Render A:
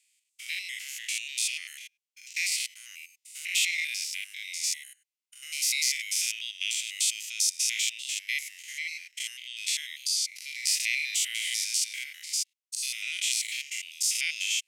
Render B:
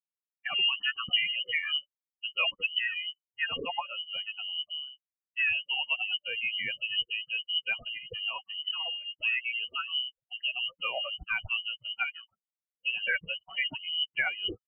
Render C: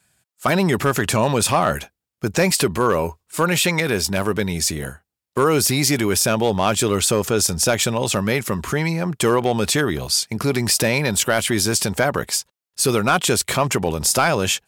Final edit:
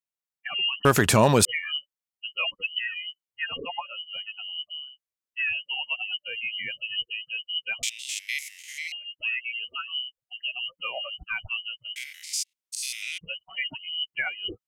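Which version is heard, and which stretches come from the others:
B
0.85–1.45 s: from C
7.83–8.92 s: from A
11.96–13.18 s: from A

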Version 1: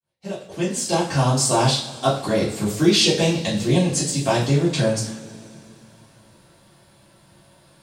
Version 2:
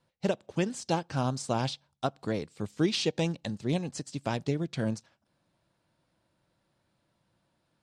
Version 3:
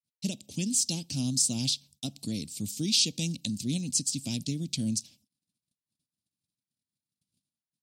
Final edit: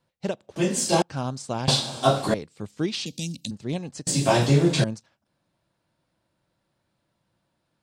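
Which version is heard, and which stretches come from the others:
2
0.56–1.02 s: from 1
1.68–2.34 s: from 1
3.06–3.51 s: from 3
4.07–4.84 s: from 1

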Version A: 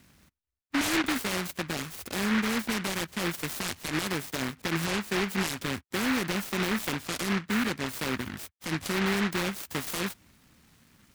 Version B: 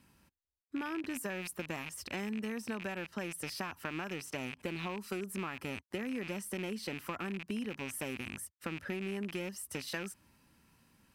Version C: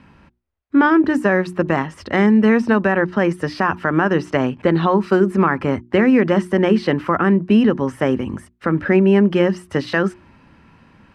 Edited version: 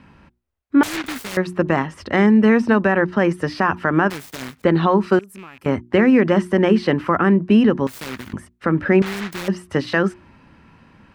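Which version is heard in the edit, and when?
C
0.83–1.37 s: from A
4.10–4.64 s: from A
5.19–5.66 s: from B
7.87–8.33 s: from A
9.02–9.48 s: from A

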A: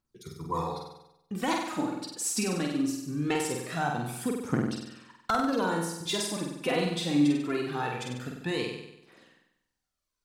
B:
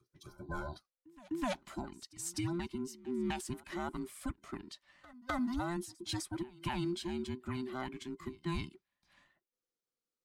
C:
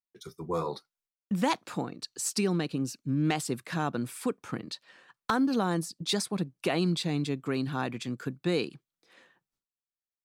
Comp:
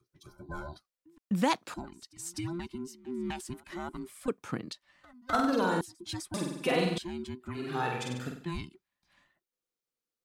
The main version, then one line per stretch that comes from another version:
B
1.18–1.74 s: from C
4.28–4.73 s: from C
5.33–5.81 s: from A
6.34–6.98 s: from A
7.64–8.40 s: from A, crossfade 0.24 s

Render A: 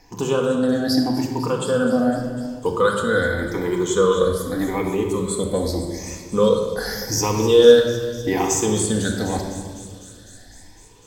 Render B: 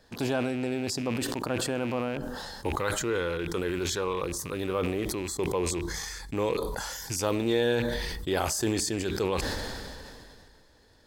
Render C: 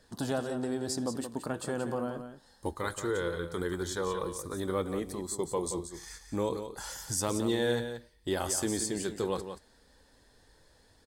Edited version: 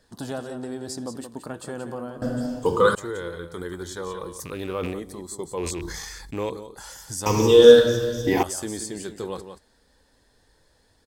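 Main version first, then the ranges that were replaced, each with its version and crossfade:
C
2.22–2.95 s: from A
4.40–4.94 s: from B
5.57–6.50 s: from B
7.26–8.43 s: from A

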